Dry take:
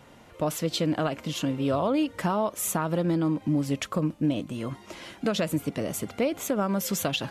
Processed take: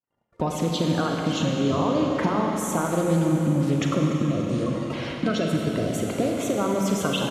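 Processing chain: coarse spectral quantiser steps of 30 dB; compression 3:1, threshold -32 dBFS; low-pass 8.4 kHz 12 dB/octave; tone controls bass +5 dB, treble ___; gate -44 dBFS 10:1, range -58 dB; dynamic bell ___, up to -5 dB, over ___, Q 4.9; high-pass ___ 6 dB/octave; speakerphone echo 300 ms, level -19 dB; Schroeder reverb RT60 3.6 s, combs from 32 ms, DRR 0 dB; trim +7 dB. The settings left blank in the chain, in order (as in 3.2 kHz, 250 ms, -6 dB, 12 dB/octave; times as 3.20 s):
-3 dB, 4.9 kHz, -59 dBFS, 90 Hz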